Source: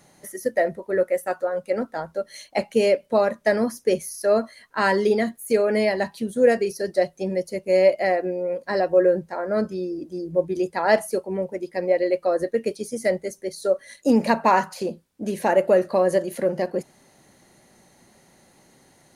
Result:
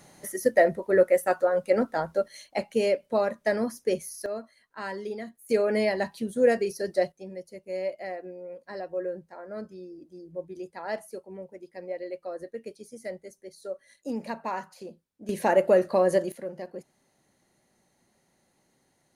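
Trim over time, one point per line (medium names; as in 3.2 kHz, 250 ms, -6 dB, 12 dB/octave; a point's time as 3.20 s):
+1.5 dB
from 2.28 s -5.5 dB
from 4.26 s -15 dB
from 5.49 s -4 dB
from 7.12 s -14.5 dB
from 15.29 s -2.5 dB
from 16.32 s -13.5 dB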